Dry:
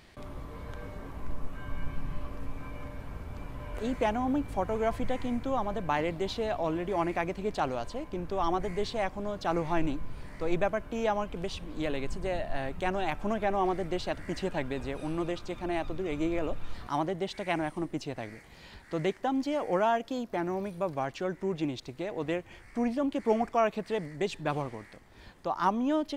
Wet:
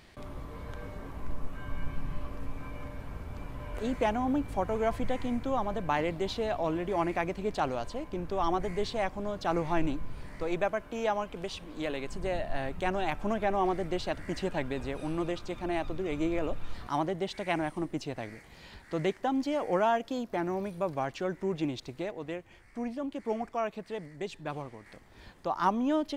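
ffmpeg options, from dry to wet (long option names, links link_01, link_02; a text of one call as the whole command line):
ffmpeg -i in.wav -filter_complex "[0:a]asettb=1/sr,asplit=3[link_01][link_02][link_03];[link_01]atrim=end=10.434[link_04];[link_02]atrim=start=10.43:end=12.15,asetpts=PTS-STARTPTS,afade=type=in:duration=0.004:curve=qsin,afade=type=out:start_time=1.716:duration=0.004:curve=qsin,lowshelf=frequency=200:gain=-8[link_05];[link_03]atrim=start=12.146[link_06];[link_04][link_05]acrossfade=duration=0.004:curve1=hsin:curve2=qsin[link_07];[link_07][link_06]acrossfade=duration=0.004:curve1=qsin:curve2=hsin,asplit=3[link_08][link_09][link_10];[link_08]atrim=end=22.112[link_11];[link_09]atrim=start=22.108:end=24.862,asetpts=PTS-STARTPTS,volume=-6dB[link_12];[link_10]atrim=start=24.858[link_13];[link_11][link_12]acrossfade=duration=0.004:curve1=hsin:curve2=hsin[link_14];[link_14][link_13]acrossfade=duration=0.004:curve1=hsin:curve2=hsin" out.wav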